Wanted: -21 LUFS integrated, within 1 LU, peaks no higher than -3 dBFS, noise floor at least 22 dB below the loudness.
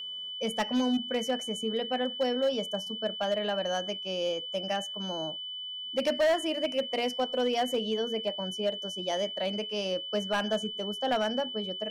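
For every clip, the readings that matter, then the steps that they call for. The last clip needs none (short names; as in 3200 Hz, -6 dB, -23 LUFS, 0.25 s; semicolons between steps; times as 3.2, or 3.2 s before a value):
clipped 1.2%; flat tops at -21.5 dBFS; steady tone 3000 Hz; tone level -36 dBFS; loudness -30.5 LUFS; peak -21.5 dBFS; loudness target -21.0 LUFS
-> clip repair -21.5 dBFS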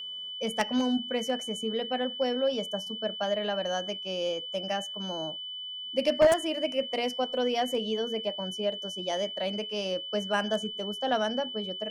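clipped 0.0%; steady tone 3000 Hz; tone level -36 dBFS
-> notch 3000 Hz, Q 30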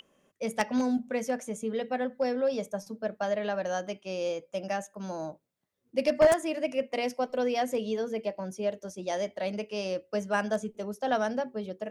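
steady tone none; loudness -31.0 LUFS; peak -12.0 dBFS; loudness target -21.0 LUFS
-> gain +10 dB; limiter -3 dBFS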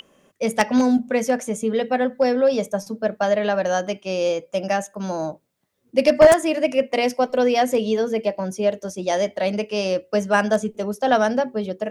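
loudness -21.0 LUFS; peak -3.0 dBFS; noise floor -65 dBFS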